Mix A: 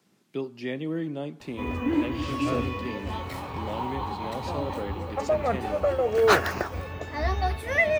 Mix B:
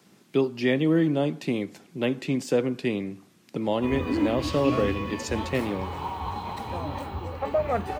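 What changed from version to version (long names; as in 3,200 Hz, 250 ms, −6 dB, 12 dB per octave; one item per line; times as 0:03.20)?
speech +9.0 dB
background: entry +2.25 s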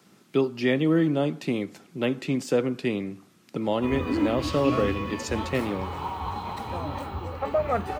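master: add parametric band 1,300 Hz +6 dB 0.2 octaves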